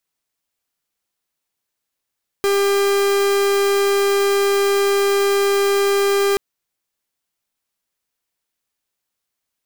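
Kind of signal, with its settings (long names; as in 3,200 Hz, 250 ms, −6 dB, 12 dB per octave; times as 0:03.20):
pulse wave 399 Hz, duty 44% −16.5 dBFS 3.93 s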